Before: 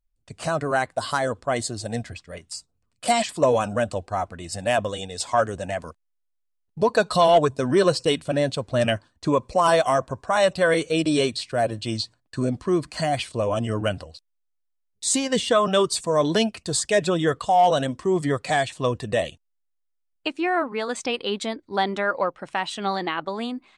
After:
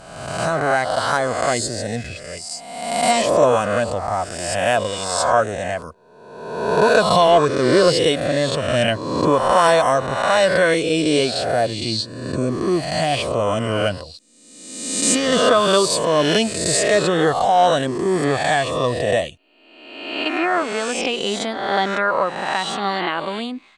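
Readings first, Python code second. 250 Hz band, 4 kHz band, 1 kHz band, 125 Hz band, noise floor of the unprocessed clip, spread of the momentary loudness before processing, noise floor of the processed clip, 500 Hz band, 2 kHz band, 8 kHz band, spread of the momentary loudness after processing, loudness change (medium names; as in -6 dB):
+3.5 dB, +6.5 dB, +5.0 dB, +3.0 dB, -74 dBFS, 11 LU, -46 dBFS, +5.0 dB, +6.5 dB, +6.5 dB, 11 LU, +5.0 dB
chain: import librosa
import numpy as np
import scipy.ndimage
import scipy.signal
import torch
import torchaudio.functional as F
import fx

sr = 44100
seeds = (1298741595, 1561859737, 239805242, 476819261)

y = fx.spec_swells(x, sr, rise_s=1.18)
y = y * librosa.db_to_amplitude(1.5)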